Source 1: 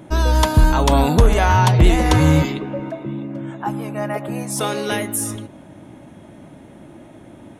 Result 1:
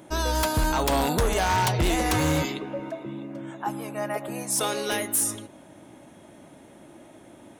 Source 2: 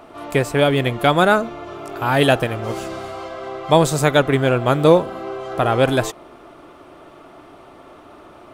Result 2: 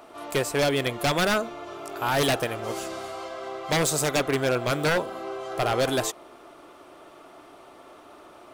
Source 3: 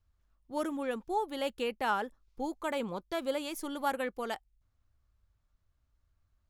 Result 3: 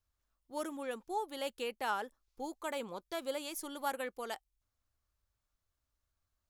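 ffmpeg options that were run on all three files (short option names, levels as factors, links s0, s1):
-af "bass=f=250:g=-8,treble=f=4000:g=6,aeval=exprs='0.251*(abs(mod(val(0)/0.251+3,4)-2)-1)':c=same,volume=0.596"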